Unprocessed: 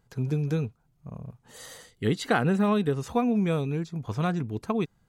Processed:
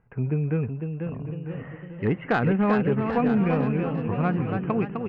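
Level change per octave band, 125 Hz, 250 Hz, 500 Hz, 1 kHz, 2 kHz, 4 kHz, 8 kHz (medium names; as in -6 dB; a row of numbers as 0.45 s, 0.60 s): +3.0 dB, +3.0 dB, +2.5 dB, +2.5 dB, +2.5 dB, -7.5 dB, under -20 dB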